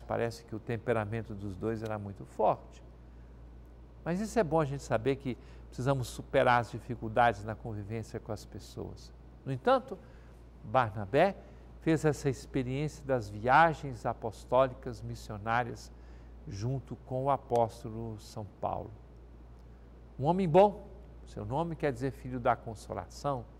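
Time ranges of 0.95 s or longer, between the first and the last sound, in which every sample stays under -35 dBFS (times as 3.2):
2.55–4.06
18.86–20.19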